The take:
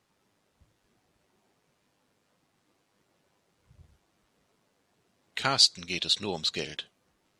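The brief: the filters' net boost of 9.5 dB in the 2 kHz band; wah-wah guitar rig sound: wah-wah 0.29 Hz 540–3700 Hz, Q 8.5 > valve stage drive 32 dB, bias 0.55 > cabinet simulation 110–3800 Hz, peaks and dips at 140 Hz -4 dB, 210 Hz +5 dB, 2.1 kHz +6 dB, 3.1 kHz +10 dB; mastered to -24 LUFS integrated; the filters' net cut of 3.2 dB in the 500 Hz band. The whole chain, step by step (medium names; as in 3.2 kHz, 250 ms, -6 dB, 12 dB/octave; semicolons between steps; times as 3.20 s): peaking EQ 500 Hz -5 dB; peaking EQ 2 kHz +7 dB; wah-wah 0.29 Hz 540–3700 Hz, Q 8.5; valve stage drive 32 dB, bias 0.55; cabinet simulation 110–3800 Hz, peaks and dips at 140 Hz -4 dB, 210 Hz +5 dB, 2.1 kHz +6 dB, 3.1 kHz +10 dB; trim +26 dB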